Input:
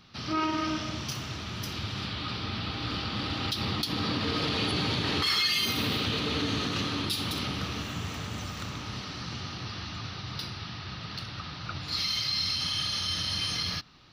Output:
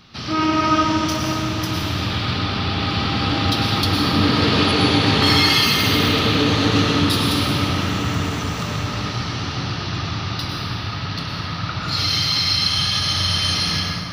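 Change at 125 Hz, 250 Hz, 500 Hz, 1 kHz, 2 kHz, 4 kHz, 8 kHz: +13.5 dB, +13.5 dB, +13.5 dB, +13.5 dB, +11.5 dB, +10.0 dB, +10.0 dB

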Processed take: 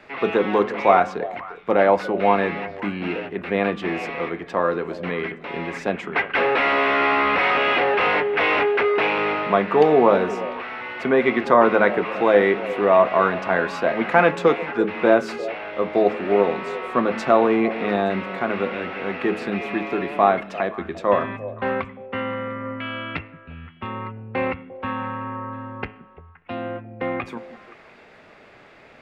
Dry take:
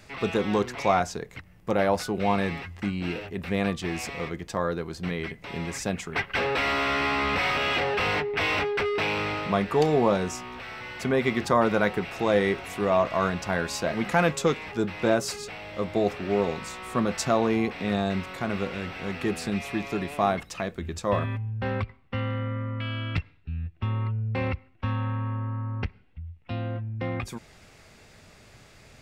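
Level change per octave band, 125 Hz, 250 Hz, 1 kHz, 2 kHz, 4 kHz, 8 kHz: -5.0 dB, +3.5 dB, +7.5 dB, +6.5 dB, +0.5 dB, under -10 dB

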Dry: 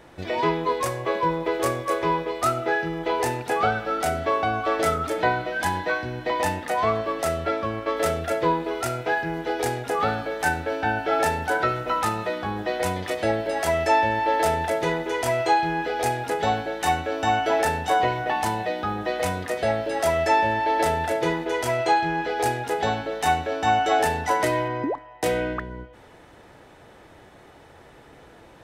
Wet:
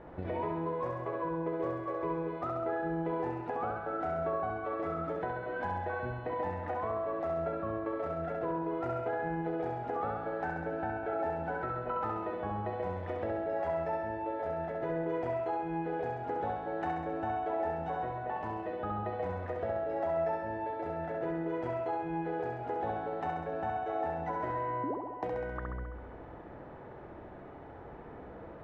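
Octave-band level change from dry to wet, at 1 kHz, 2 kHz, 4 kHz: -12.0 dB, -16.5 dB, under -25 dB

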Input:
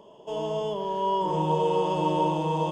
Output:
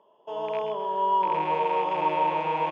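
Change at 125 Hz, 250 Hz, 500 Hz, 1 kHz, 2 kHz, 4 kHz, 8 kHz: -13.0 dB, -8.5 dB, -2.5 dB, +3.0 dB, +8.5 dB, -3.5 dB, no reading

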